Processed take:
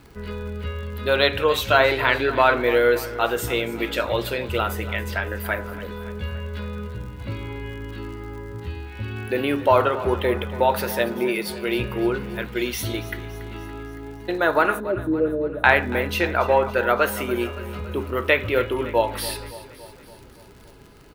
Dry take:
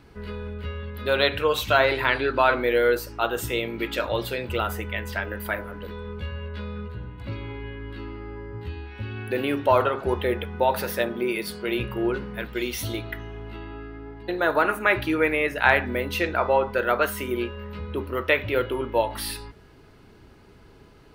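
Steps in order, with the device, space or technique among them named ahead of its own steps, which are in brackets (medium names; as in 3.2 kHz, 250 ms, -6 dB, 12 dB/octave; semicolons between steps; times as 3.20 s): vinyl LP (crackle 91 per s -40 dBFS; white noise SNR 45 dB); 14.80–15.64 s: elliptic low-pass 600 Hz; feedback delay 282 ms, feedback 59%, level -16 dB; trim +2.5 dB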